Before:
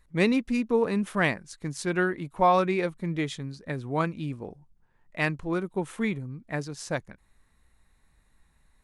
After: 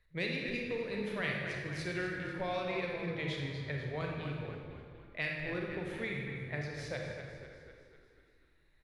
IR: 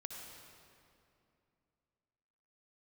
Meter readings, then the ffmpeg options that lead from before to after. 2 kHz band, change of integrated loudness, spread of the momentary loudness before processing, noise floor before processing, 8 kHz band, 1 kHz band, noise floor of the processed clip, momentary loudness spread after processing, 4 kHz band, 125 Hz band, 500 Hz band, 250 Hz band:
−5.5 dB, −9.5 dB, 12 LU, −65 dBFS, −14.0 dB, −15.5 dB, −68 dBFS, 12 LU, −3.5 dB, −6.5 dB, −10.0 dB, −12.5 dB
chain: -filter_complex "[0:a]equalizer=frequency=125:width_type=o:width=1:gain=5,equalizer=frequency=250:width_type=o:width=1:gain=-9,equalizer=frequency=500:width_type=o:width=1:gain=8,equalizer=frequency=1000:width_type=o:width=1:gain=-6,equalizer=frequency=2000:width_type=o:width=1:gain=8,equalizer=frequency=4000:width_type=o:width=1:gain=7,equalizer=frequency=8000:width_type=o:width=1:gain=-11,asplit=7[link_01][link_02][link_03][link_04][link_05][link_06][link_07];[link_02]adelay=248,afreqshift=-33,volume=-12.5dB[link_08];[link_03]adelay=496,afreqshift=-66,volume=-17.7dB[link_09];[link_04]adelay=744,afreqshift=-99,volume=-22.9dB[link_10];[link_05]adelay=992,afreqshift=-132,volume=-28.1dB[link_11];[link_06]adelay=1240,afreqshift=-165,volume=-33.3dB[link_12];[link_07]adelay=1488,afreqshift=-198,volume=-38.5dB[link_13];[link_01][link_08][link_09][link_10][link_11][link_12][link_13]amix=inputs=7:normalize=0,acrossover=split=160|3000[link_14][link_15][link_16];[link_15]acompressor=threshold=-26dB:ratio=6[link_17];[link_14][link_17][link_16]amix=inputs=3:normalize=0[link_18];[1:a]atrim=start_sample=2205,asetrate=79380,aresample=44100[link_19];[link_18][link_19]afir=irnorm=-1:irlink=0"

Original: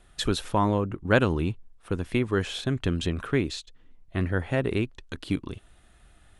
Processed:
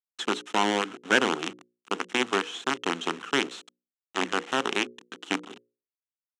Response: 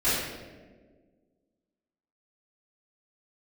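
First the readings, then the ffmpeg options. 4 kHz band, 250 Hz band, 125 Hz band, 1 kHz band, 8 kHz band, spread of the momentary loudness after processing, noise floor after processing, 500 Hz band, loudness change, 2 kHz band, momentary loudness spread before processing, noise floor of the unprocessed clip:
+5.0 dB, −4.5 dB, −19.0 dB, +4.0 dB, +5.0 dB, 11 LU, below −85 dBFS, −2.5 dB, −0.5 dB, +4.5 dB, 11 LU, −57 dBFS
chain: -af "acrusher=bits=4:dc=4:mix=0:aa=0.000001,highpass=frequency=230:width=0.5412,highpass=frequency=230:width=1.3066,equalizer=frequency=590:width_type=q:width=4:gain=-9,equalizer=frequency=1300:width_type=q:width=4:gain=5,equalizer=frequency=3000:width_type=q:width=4:gain=6,equalizer=frequency=4700:width_type=q:width=4:gain=-8,lowpass=frequency=7600:width=0.5412,lowpass=frequency=7600:width=1.3066,bandreject=frequency=60:width_type=h:width=6,bandreject=frequency=120:width_type=h:width=6,bandreject=frequency=180:width_type=h:width=6,bandreject=frequency=240:width_type=h:width=6,bandreject=frequency=300:width_type=h:width=6,bandreject=frequency=360:width_type=h:width=6,bandreject=frequency=420:width_type=h:width=6,bandreject=frequency=480:width_type=h:width=6,bandreject=frequency=540:width_type=h:width=6"

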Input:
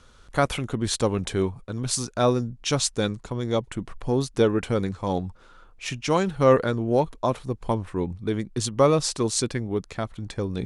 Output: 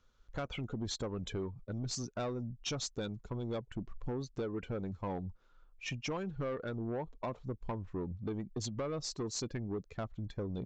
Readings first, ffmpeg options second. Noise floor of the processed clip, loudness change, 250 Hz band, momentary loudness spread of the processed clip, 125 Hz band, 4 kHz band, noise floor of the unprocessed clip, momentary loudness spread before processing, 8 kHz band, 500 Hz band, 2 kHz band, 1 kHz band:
−66 dBFS, −14.5 dB, −13.0 dB, 4 LU, −12.0 dB, −12.0 dB, −53 dBFS, 11 LU, −14.5 dB, −16.5 dB, −13.5 dB, −17.0 dB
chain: -af "afftdn=noise_reduction=15:noise_floor=-32,acompressor=threshold=-26dB:ratio=10,aresample=16000,asoftclip=type=tanh:threshold=-26.5dB,aresample=44100,volume=-4.5dB"

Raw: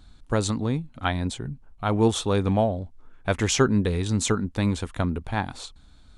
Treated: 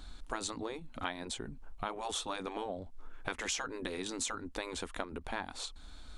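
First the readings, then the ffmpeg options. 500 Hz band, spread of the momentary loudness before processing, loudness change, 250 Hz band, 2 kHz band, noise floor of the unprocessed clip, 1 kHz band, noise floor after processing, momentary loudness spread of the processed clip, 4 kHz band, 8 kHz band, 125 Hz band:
−15.0 dB, 13 LU, −14.0 dB, −18.5 dB, −8.5 dB, −52 dBFS, −10.0 dB, −51 dBFS, 7 LU, −8.0 dB, −8.5 dB, −26.0 dB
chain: -af "afftfilt=real='re*lt(hypot(re,im),0.316)':imag='im*lt(hypot(re,im),0.316)':win_size=1024:overlap=0.75,equalizer=frequency=120:width=1:gain=-15,acompressor=threshold=-44dB:ratio=3,volume=5dB"

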